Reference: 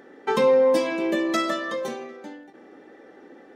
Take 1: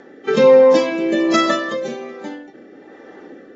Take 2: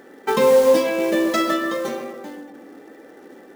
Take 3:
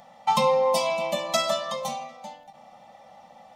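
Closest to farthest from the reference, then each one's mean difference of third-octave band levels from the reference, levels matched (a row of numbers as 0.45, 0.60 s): 1, 2, 3; 2.0, 3.5, 6.5 dB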